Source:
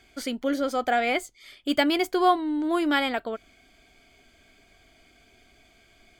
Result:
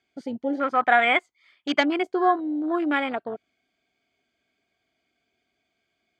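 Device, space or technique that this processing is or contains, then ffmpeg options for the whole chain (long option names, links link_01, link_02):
over-cleaned archive recording: -filter_complex "[0:a]asplit=3[link_01][link_02][link_03];[link_01]afade=type=out:start_time=0.54:duration=0.02[link_04];[link_02]equalizer=frequency=125:width_type=o:width=1:gain=-5,equalizer=frequency=500:width_type=o:width=1:gain=-4,equalizer=frequency=1000:width_type=o:width=1:gain=11,equalizer=frequency=2000:width_type=o:width=1:gain=7,equalizer=frequency=8000:width_type=o:width=1:gain=-3,afade=type=in:start_time=0.54:duration=0.02,afade=type=out:start_time=1.79:duration=0.02[link_05];[link_03]afade=type=in:start_time=1.79:duration=0.02[link_06];[link_04][link_05][link_06]amix=inputs=3:normalize=0,highpass=120,lowpass=6300,afwtdn=0.0355"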